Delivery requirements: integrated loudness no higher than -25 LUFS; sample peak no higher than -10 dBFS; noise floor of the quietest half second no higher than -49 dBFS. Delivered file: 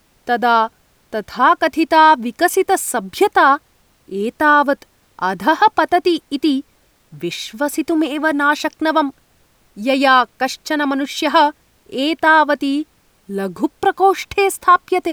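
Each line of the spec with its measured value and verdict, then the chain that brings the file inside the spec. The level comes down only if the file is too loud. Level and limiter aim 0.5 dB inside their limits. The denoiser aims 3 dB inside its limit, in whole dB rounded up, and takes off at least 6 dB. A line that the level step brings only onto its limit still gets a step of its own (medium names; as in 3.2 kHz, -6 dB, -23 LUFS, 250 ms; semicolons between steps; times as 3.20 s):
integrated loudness -16.0 LUFS: fail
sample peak -1.5 dBFS: fail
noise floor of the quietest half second -56 dBFS: pass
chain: trim -9.5 dB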